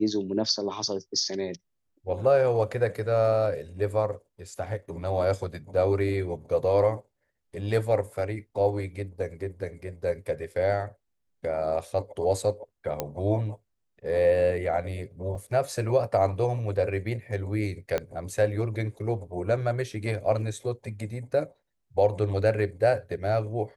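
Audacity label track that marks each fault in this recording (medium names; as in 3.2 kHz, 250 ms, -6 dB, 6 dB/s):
13.000000	13.000000	pop -13 dBFS
15.350000	15.350000	dropout 3.3 ms
17.980000	17.980000	pop -14 dBFS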